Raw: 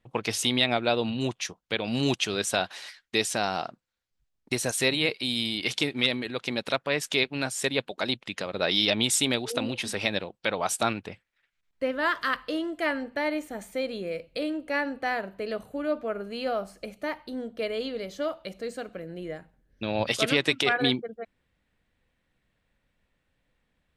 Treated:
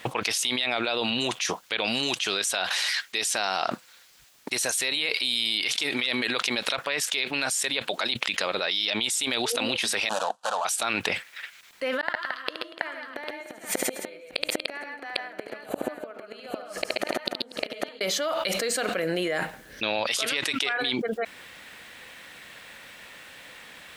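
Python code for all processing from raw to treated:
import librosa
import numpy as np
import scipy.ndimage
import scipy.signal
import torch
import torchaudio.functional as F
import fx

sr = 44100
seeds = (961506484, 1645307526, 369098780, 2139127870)

y = fx.chain(x, sr, fx.median_filter(points=25),
    fx.cabinet(low_hz=380.0, low_slope=12, high_hz=9700.0, hz=(510.0, 1500.0, 5200.0), db=(-4, 4, -5)),
    fx.fixed_phaser(hz=890.0, stages=4), at=(10.09, 10.65))
y = fx.chain(y, sr, fx.high_shelf(hz=3800.0, db=-7.5),
    fx.gate_flip(shuts_db=-30.0, range_db=-41),
    fx.echo_multitap(ms=(73, 130, 138, 239, 295, 800), db=(-8.0, -5.5, -6.0, -19.0, -14.5, -8.0)), at=(12.01, 18.01))
y = fx.highpass(y, sr, hz=1300.0, slope=6)
y = fx.env_flatten(y, sr, amount_pct=100)
y = y * 10.0 ** (-5.0 / 20.0)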